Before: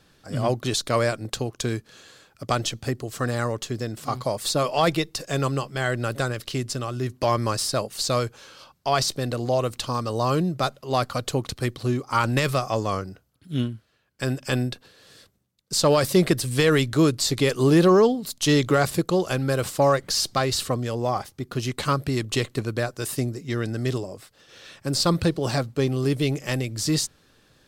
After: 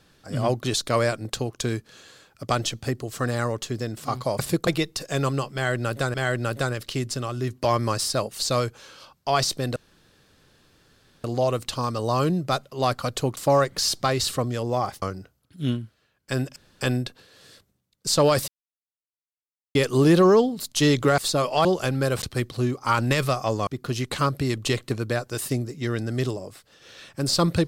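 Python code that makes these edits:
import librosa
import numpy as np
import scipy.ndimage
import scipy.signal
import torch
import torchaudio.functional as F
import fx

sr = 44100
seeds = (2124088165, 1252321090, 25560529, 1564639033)

y = fx.edit(x, sr, fx.swap(start_s=4.39, length_s=0.47, other_s=18.84, other_length_s=0.28),
    fx.repeat(start_s=5.73, length_s=0.6, count=2),
    fx.insert_room_tone(at_s=9.35, length_s=1.48),
    fx.swap(start_s=11.48, length_s=1.45, other_s=19.69, other_length_s=1.65),
    fx.insert_room_tone(at_s=14.47, length_s=0.25),
    fx.silence(start_s=16.14, length_s=1.27), tone=tone)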